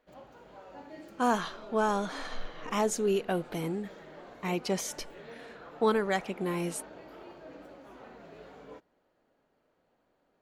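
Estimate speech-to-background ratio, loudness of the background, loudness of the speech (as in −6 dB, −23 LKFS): 17.5 dB, −49.0 LKFS, −31.5 LKFS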